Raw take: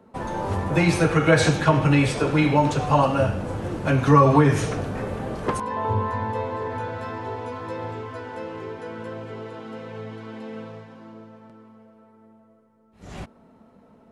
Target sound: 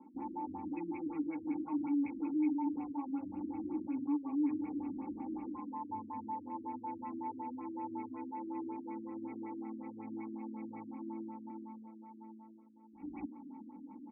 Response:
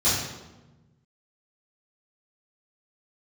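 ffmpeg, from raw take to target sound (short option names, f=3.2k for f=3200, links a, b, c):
-filter_complex "[0:a]aecho=1:1:3.6:0.94,acontrast=87,alimiter=limit=-13dB:level=0:latency=1:release=44,areverse,acompressor=threshold=-31dB:ratio=6,areverse,asplit=3[a][b][c];[a]bandpass=f=300:t=q:w=8,volume=0dB[d];[b]bandpass=f=870:t=q:w=8,volume=-6dB[e];[c]bandpass=f=2.24k:t=q:w=8,volume=-9dB[f];[d][e][f]amix=inputs=3:normalize=0,afftfilt=real='re*lt(b*sr/1024,340*pow(2800/340,0.5+0.5*sin(2*PI*5.4*pts/sr)))':imag='im*lt(b*sr/1024,340*pow(2800/340,0.5+0.5*sin(2*PI*5.4*pts/sr)))':win_size=1024:overlap=0.75,volume=2.5dB"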